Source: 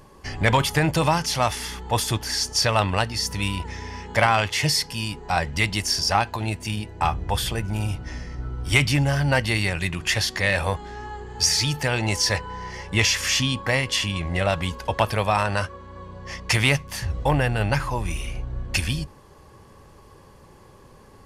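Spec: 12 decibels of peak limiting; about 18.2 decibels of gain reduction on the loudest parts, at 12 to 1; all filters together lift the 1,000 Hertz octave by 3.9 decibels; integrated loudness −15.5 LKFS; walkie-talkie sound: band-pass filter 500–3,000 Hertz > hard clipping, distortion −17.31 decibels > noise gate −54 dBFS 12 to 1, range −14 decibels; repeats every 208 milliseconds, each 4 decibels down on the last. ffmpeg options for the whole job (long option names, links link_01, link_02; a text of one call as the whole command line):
ffmpeg -i in.wav -af "equalizer=frequency=1000:width_type=o:gain=5.5,acompressor=threshold=-30dB:ratio=12,alimiter=level_in=3dB:limit=-24dB:level=0:latency=1,volume=-3dB,highpass=500,lowpass=3000,aecho=1:1:208|416|624|832|1040|1248|1456|1664|1872:0.631|0.398|0.25|0.158|0.0994|0.0626|0.0394|0.0249|0.0157,asoftclip=type=hard:threshold=-33dB,agate=range=-14dB:threshold=-54dB:ratio=12,volume=24.5dB" out.wav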